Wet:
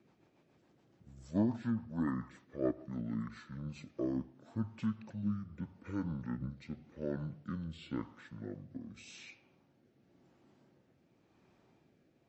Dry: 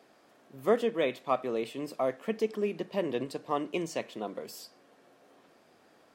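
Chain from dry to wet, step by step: speed mistake 15 ips tape played at 7.5 ips; rotary cabinet horn 7 Hz, later 0.9 Hz, at 3.33 s; trim -5.5 dB

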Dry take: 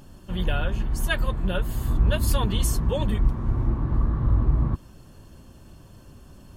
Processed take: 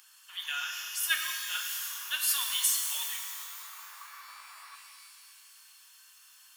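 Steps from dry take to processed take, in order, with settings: Bessel high-pass 2 kHz, order 6; treble shelf 9.4 kHz +5 dB; in parallel at -11.5 dB: overload inside the chain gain 25 dB; on the sum: pitch-shifted reverb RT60 2.1 s, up +12 st, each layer -2 dB, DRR 2.5 dB

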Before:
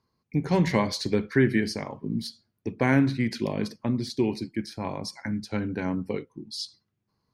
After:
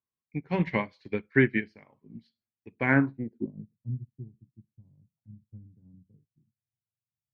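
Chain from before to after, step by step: low-pass sweep 2.5 kHz -> 130 Hz, 2.83–3.67 s; upward expansion 2.5:1, over -33 dBFS

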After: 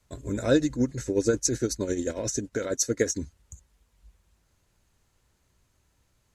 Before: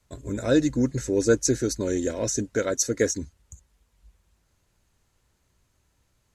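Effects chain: 0.55–3.17 s: tremolo 11 Hz, depth 62%

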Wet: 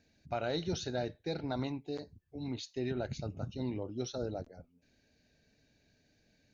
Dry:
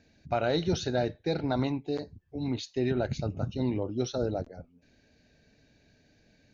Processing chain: treble shelf 4.2 kHz +5.5 dB; trim -7.5 dB

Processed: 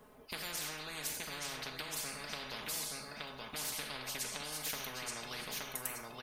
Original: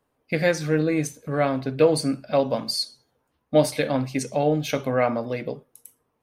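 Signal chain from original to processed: treble shelf 4.8 kHz -7 dB; comb 4.7 ms; compression 6:1, threshold -25 dBFS, peak gain reduction 14.5 dB; treble shelf 10 kHz +9.5 dB; on a send: feedback delay 874 ms, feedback 21%, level -10.5 dB; on the sum: Schroeder reverb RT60 0.5 s, combs from 31 ms, DRR 12.5 dB; spectrum-flattening compressor 10:1; trim -6 dB

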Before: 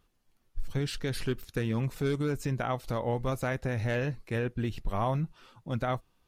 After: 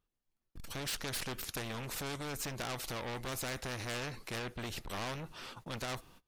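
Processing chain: gate -57 dBFS, range -28 dB; saturation -32.5 dBFS, distortion -8 dB; spectrum-flattening compressor 2:1; trim +7.5 dB

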